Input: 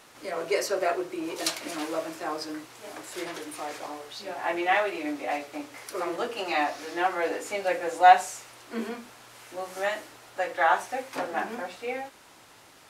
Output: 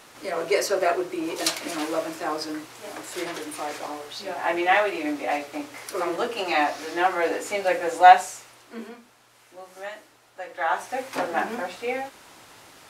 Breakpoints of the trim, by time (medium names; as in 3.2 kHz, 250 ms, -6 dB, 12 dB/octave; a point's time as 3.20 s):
8.06 s +4 dB
9.02 s -7.5 dB
10.42 s -7.5 dB
11.06 s +4.5 dB